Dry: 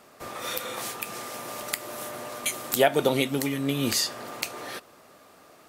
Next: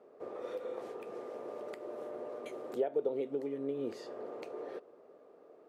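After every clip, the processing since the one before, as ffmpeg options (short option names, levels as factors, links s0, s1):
-af "bandpass=f=440:t=q:w=3.6:csg=0,acompressor=threshold=0.00891:ratio=2,volume=1.58"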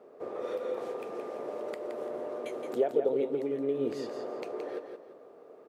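-af "aecho=1:1:170|340|510|680:0.447|0.13|0.0376|0.0109,volume=1.78"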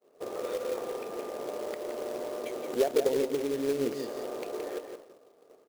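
-af "agate=range=0.0224:threshold=0.00562:ratio=3:detection=peak,acrusher=bits=3:mode=log:mix=0:aa=0.000001,volume=1.12"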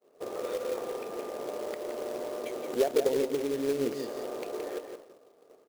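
-af anull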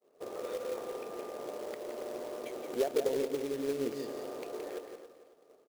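-af "aecho=1:1:276|552|828:0.211|0.0592|0.0166,volume=0.596"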